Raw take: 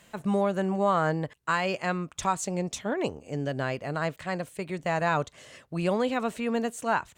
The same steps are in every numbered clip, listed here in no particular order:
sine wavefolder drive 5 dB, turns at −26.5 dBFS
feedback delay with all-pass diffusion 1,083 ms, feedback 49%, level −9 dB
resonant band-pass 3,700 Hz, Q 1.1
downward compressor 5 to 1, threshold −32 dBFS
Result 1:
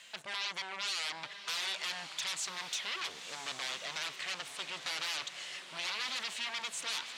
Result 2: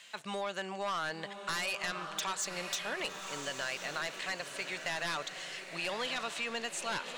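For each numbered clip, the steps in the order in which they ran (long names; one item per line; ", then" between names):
sine wavefolder, then resonant band-pass, then downward compressor, then feedback delay with all-pass diffusion
resonant band-pass, then sine wavefolder, then feedback delay with all-pass diffusion, then downward compressor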